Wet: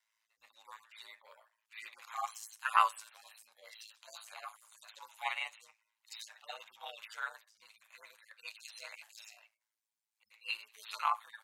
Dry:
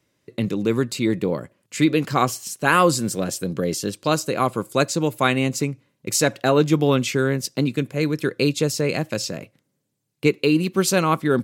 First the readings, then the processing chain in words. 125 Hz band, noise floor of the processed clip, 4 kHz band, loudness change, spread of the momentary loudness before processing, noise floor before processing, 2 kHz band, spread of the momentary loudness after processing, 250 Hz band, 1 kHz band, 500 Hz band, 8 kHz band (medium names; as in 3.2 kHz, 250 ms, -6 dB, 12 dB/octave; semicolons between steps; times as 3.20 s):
under -40 dB, under -85 dBFS, -17.5 dB, -17.0 dB, 8 LU, -74 dBFS, -16.0 dB, 22 LU, under -40 dB, -12.0 dB, -36.5 dB, -25.0 dB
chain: harmonic-percussive separation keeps harmonic; ring modulator 55 Hz; elliptic high-pass 850 Hz, stop band 60 dB; trim -3 dB